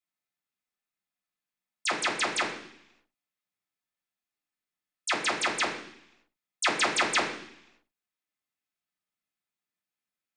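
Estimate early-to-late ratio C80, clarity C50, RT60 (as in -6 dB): 9.5 dB, 6.5 dB, 0.70 s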